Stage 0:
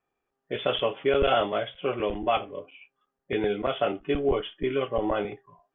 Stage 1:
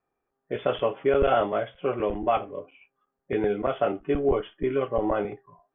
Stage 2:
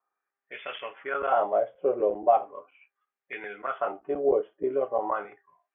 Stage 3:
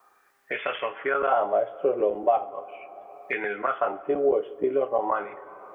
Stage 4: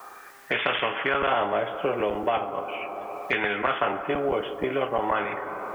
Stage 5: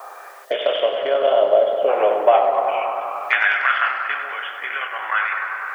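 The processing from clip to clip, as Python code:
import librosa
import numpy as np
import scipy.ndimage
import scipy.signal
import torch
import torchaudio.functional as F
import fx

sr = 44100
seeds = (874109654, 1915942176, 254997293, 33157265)

y1 = scipy.signal.sosfilt(scipy.signal.butter(2, 1800.0, 'lowpass', fs=sr, output='sos'), x)
y1 = y1 * librosa.db_to_amplitude(1.5)
y2 = fx.wah_lfo(y1, sr, hz=0.39, low_hz=490.0, high_hz=2300.0, q=2.6)
y2 = y2 * librosa.db_to_amplitude(4.5)
y3 = fx.rev_plate(y2, sr, seeds[0], rt60_s=2.0, hf_ratio=0.8, predelay_ms=0, drr_db=18.0)
y3 = fx.band_squash(y3, sr, depth_pct=70)
y3 = y3 * librosa.db_to_amplitude(2.0)
y4 = fx.spectral_comp(y3, sr, ratio=2.0)
y5 = fx.filter_sweep_highpass(y4, sr, from_hz=590.0, to_hz=1600.0, start_s=2.26, end_s=3.54, q=3.3)
y5 = fx.echo_tape(y5, sr, ms=97, feedback_pct=88, wet_db=-8, lp_hz=3100.0, drive_db=8.0, wow_cents=29)
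y5 = fx.spec_box(y5, sr, start_s=0.45, length_s=1.44, low_hz=700.0, high_hz=2800.0, gain_db=-11)
y5 = y5 * librosa.db_to_amplitude(3.0)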